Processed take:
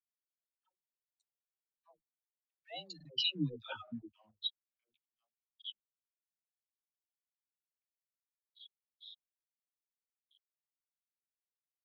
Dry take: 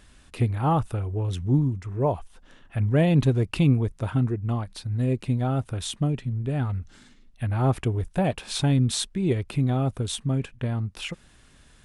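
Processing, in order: Doppler pass-by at 3.63 s, 35 m/s, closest 7.9 m; differentiator; waveshaping leveller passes 3; low-pass sweep 7.4 kHz -> 3.7 kHz, 2.31–4.10 s; spectral gate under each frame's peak -15 dB strong; doubling 13 ms -11 dB; word length cut 8-bit, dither none; phase dispersion lows, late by 137 ms, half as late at 500 Hz; crackling interface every 0.87 s, samples 2048, repeat, from 0.35 s; spectral contrast expander 2.5:1; trim +3 dB

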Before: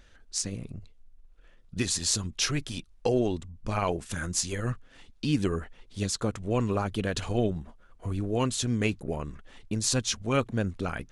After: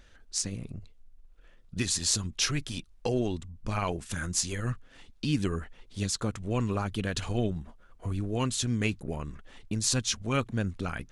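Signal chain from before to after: dynamic bell 530 Hz, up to -5 dB, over -40 dBFS, Q 0.77

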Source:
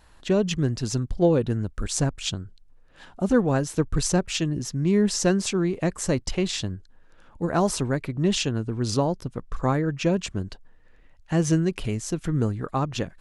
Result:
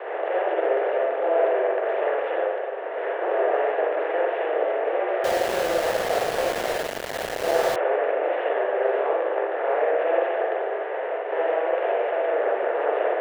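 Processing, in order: spectral levelling over time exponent 0.2; gate with hold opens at -11 dBFS; peaking EQ 960 Hz -9.5 dB 1.4 oct; mistuned SSB +160 Hz 300–2100 Hz; on a send: echo that smears into a reverb 1890 ms, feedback 52%, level -15 dB; on the sum: spring tank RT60 1.1 s, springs 42/57 ms, chirp 75 ms, DRR -5 dB; 5.24–7.76 s: small samples zeroed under -17 dBFS; trim -8 dB

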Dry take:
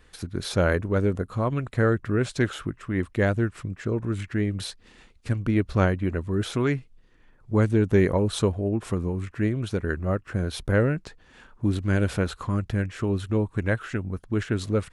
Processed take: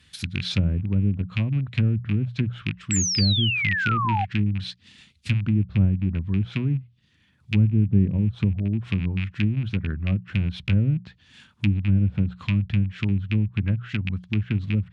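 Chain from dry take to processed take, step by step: rattle on loud lows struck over -28 dBFS, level -16 dBFS; high-pass 75 Hz 24 dB/octave; hum notches 60/120/180 Hz; low-pass that closes with the level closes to 410 Hz, closed at -19 dBFS; FFT filter 190 Hz 0 dB, 430 Hz -19 dB, 1.2 kHz -12 dB, 3.4 kHz +4 dB, 6.8 kHz -2 dB; painted sound fall, 2.91–4.25 s, 740–7900 Hz -30 dBFS; trim +5 dB

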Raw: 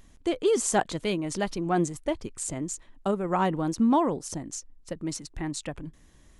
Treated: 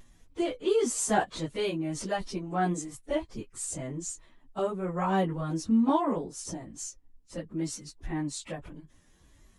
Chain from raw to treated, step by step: plain phase-vocoder stretch 1.5×; vibrato 1.2 Hz 24 cents

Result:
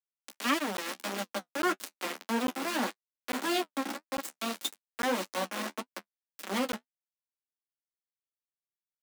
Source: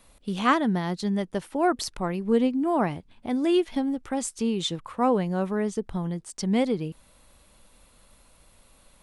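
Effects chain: comb filter that takes the minimum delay 3.6 ms; bass shelf 450 Hz -5.5 dB; on a send: echo that smears into a reverb 486 ms, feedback 52%, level -15 dB; on the sum: small samples zeroed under -25.5 dBFS; flange 1.7 Hz, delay 9 ms, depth 6.3 ms, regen -32%; in parallel at -2 dB: compression, threshold -36 dBFS, peak gain reduction 13.5 dB; on the sum: steep high-pass 190 Hz 72 dB/octave; band-stop 860 Hz, Q 17; crackling interface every 0.85 s, samples 512, zero, from 0.77 s; transformer saturation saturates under 1.1 kHz

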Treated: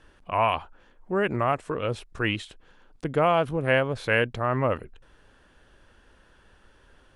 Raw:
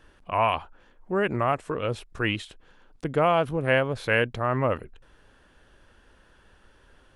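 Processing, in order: steep low-pass 11 kHz

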